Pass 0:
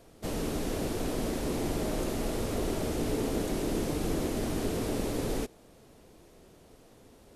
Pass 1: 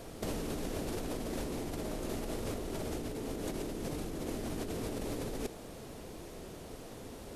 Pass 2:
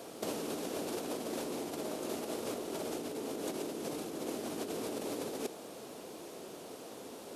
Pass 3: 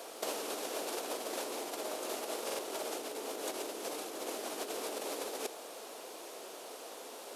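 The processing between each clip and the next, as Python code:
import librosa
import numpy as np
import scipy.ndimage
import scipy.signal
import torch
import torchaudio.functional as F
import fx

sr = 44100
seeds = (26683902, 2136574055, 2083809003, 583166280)

y1 = fx.over_compress(x, sr, threshold_db=-39.0, ratio=-1.0)
y1 = F.gain(torch.from_numpy(y1), 1.5).numpy()
y2 = scipy.signal.sosfilt(scipy.signal.butter(2, 270.0, 'highpass', fs=sr, output='sos'), y1)
y2 = fx.peak_eq(y2, sr, hz=1900.0, db=-4.5, octaves=0.51)
y2 = F.gain(torch.from_numpy(y2), 2.0).numpy()
y3 = scipy.signal.sosfilt(scipy.signal.butter(2, 540.0, 'highpass', fs=sr, output='sos'), y2)
y3 = fx.quant_float(y3, sr, bits=4)
y3 = fx.buffer_glitch(y3, sr, at_s=(2.45,), block=2048, repeats=2)
y3 = F.gain(torch.from_numpy(y3), 3.5).numpy()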